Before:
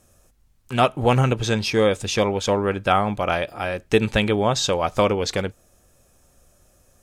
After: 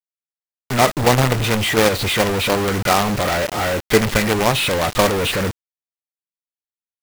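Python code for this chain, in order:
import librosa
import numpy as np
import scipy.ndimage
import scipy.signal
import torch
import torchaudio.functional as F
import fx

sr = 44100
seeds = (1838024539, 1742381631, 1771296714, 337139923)

y = fx.freq_compress(x, sr, knee_hz=1200.0, ratio=1.5)
y = fx.quant_companded(y, sr, bits=2)
y = (np.mod(10.0 ** (9.0 / 20.0) * y + 1.0, 2.0) - 1.0) / 10.0 ** (9.0 / 20.0)
y = y * 10.0 ** (6.0 / 20.0)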